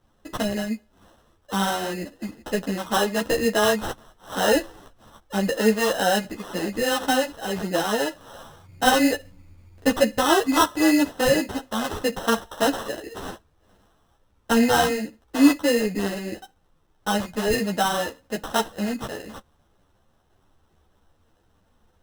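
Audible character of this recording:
aliases and images of a low sample rate 2,300 Hz, jitter 0%
a shimmering, thickened sound

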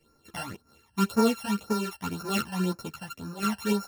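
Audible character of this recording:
a buzz of ramps at a fixed pitch in blocks of 32 samples
phaser sweep stages 12, 1.9 Hz, lowest notch 380–3,200 Hz
sample-and-hold tremolo
a shimmering, thickened sound

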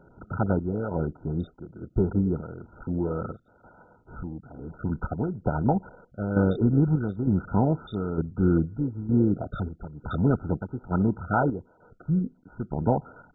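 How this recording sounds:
chopped level 1.1 Hz, depth 60%, duty 65%
MP2

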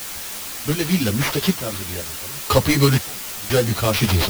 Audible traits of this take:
aliases and images of a low sample rate 8,200 Hz
sample-and-hold tremolo 2 Hz, depth 95%
a quantiser's noise floor 6 bits, dither triangular
a shimmering, thickened sound

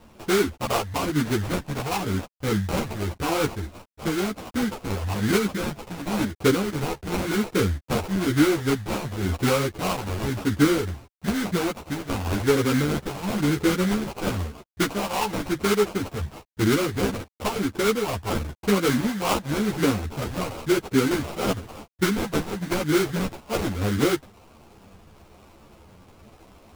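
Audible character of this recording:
a quantiser's noise floor 10 bits, dither none
phaser sweep stages 2, 0.97 Hz, lowest notch 300–1,400 Hz
aliases and images of a low sample rate 1,800 Hz, jitter 20%
a shimmering, thickened sound

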